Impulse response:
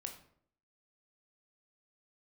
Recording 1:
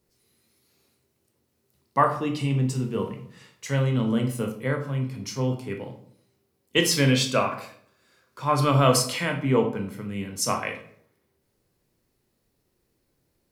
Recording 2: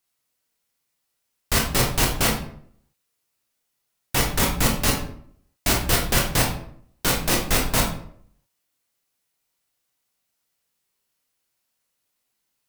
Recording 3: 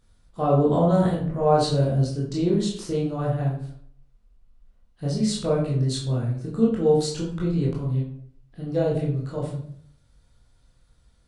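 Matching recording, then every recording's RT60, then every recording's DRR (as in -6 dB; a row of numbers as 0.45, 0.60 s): 1; 0.65, 0.60, 0.60 s; 3.5, -1.0, -5.5 dB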